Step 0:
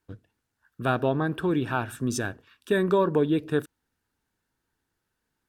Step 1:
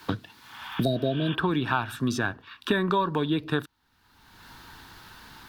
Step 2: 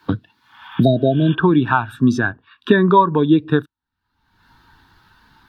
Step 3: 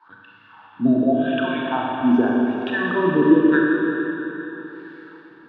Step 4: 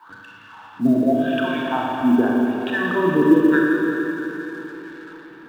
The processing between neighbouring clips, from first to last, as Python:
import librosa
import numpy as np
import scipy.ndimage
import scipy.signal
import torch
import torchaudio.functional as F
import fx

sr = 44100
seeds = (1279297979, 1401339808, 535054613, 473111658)

y1 = fx.graphic_eq(x, sr, hz=(500, 1000, 4000, 8000), db=(-7, 8, 9, -7))
y1 = fx.spec_repair(y1, sr, seeds[0], start_s=0.41, length_s=0.91, low_hz=720.0, high_hz=3700.0, source='both')
y1 = fx.band_squash(y1, sr, depth_pct=100)
y2 = fx.spectral_expand(y1, sr, expansion=1.5)
y2 = y2 * 10.0 ** (8.5 / 20.0)
y3 = fx.wah_lfo(y2, sr, hz=0.87, low_hz=250.0, high_hz=2600.0, q=3.5)
y3 = fx.auto_swell(y3, sr, attack_ms=133.0)
y3 = fx.rev_schroeder(y3, sr, rt60_s=3.7, comb_ms=29, drr_db=-3.5)
y3 = y3 * 10.0 ** (5.5 / 20.0)
y4 = fx.law_mismatch(y3, sr, coded='mu')